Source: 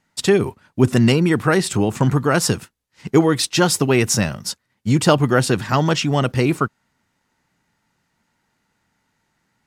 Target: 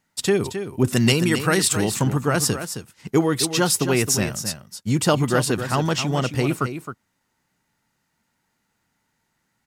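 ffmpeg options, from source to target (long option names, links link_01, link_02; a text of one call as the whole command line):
ffmpeg -i in.wav -filter_complex "[0:a]highshelf=frequency=9100:gain=10,aecho=1:1:266:0.335,asettb=1/sr,asplit=3[link_01][link_02][link_03];[link_01]atrim=end=0.834[link_04];[link_02]atrim=start=0.83:end=2.03,asetpts=PTS-STARTPTS,afade=type=in:duration=0.004:curve=qsin,afade=type=out:start_time=1.196:duration=0.004:curve=qsin,adynamicequalizer=threshold=0.0224:dfrequency=1900:dqfactor=0.7:tfrequency=1900:tqfactor=0.7:attack=5:release=100:ratio=0.375:range=3.5:mode=boostabove:tftype=highshelf[link_05];[link_03]atrim=start=2.026[link_06];[link_04][link_05]acrossfade=duration=0.004:curve1=hsin:curve2=qsin[link_07];[link_07][link_06]acrossfade=duration=0.004:curve1=qsin:curve2=hsin,volume=-4.5dB" out.wav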